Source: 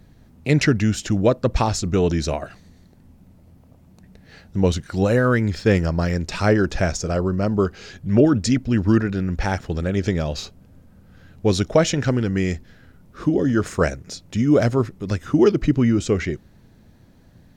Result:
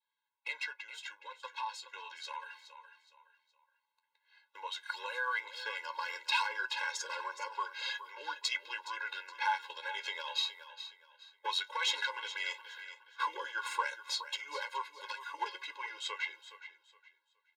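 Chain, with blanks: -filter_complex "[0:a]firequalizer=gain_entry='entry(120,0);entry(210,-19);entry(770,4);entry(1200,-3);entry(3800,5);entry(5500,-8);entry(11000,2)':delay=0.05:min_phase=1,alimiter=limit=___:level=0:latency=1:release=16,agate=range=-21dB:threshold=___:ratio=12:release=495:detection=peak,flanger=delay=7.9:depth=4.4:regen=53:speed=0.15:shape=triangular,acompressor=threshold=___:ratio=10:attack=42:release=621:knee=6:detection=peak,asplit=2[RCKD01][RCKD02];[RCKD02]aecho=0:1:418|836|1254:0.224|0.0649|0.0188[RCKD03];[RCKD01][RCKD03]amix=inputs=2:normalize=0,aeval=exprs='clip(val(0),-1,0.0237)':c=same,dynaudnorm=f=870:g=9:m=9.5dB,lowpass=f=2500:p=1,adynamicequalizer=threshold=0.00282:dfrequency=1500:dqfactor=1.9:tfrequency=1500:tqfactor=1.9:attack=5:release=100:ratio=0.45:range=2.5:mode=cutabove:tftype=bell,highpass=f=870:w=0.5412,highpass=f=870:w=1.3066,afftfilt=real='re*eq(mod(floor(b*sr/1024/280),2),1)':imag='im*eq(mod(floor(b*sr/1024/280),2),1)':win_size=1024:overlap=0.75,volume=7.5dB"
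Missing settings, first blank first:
-15.5dB, -40dB, -35dB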